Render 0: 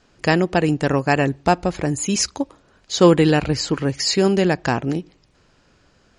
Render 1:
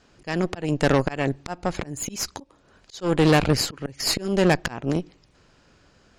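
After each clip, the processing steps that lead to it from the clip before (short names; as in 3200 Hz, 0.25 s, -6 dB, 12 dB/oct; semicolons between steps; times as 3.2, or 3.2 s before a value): auto swell 0.335 s; added harmonics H 8 -18 dB, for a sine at -4.5 dBFS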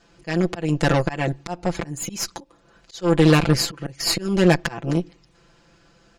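comb 5.9 ms, depth 91%; gain -1 dB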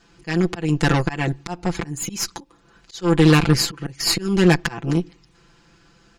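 bell 590 Hz -13.5 dB 0.3 oct; gain +2 dB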